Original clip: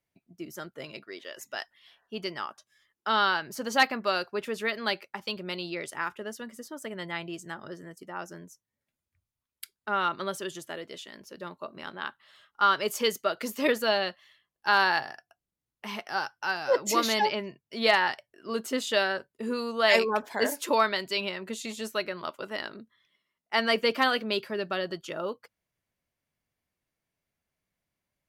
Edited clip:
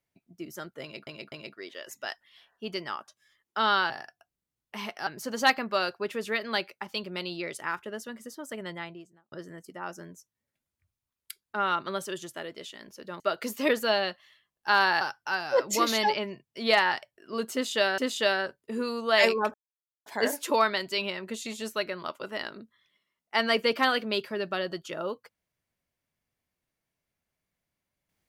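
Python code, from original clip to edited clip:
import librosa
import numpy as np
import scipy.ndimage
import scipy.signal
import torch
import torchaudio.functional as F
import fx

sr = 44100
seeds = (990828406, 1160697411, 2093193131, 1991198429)

y = fx.studio_fade_out(x, sr, start_s=6.92, length_s=0.73)
y = fx.edit(y, sr, fx.repeat(start_s=0.82, length_s=0.25, count=3),
    fx.cut(start_s=11.53, length_s=1.66),
    fx.move(start_s=15.0, length_s=1.17, to_s=3.4),
    fx.repeat(start_s=18.69, length_s=0.45, count=2),
    fx.insert_silence(at_s=20.25, length_s=0.52), tone=tone)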